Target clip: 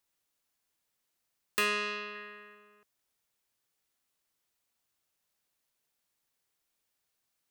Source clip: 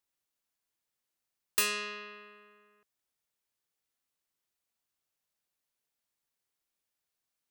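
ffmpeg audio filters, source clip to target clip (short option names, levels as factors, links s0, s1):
-filter_complex "[0:a]asettb=1/sr,asplit=3[s0][s1][s2];[s0]atrim=end=2.154[s3];[s1]atrim=start=2.15:end=2.55,asetpts=PTS-STARTPTS,afade=t=in:d=0.004:c=qsin,afade=t=out:st=0.396:d=0.004:c=qsin,equalizer=f=1800:t=o:w=0.31:g=7[s4];[s2]atrim=start=2.546[s5];[s3][s4]acrossfade=d=0.004:c1=hsin:c2=qsin[s6];[s6][s5]acrossfade=d=0.004:c1=qsin:c2=hsin,acrossover=split=610|3100[s7][s8][s9];[s9]acompressor=threshold=0.00794:ratio=6[s10];[s7][s8][s10]amix=inputs=3:normalize=0,volume=1.78"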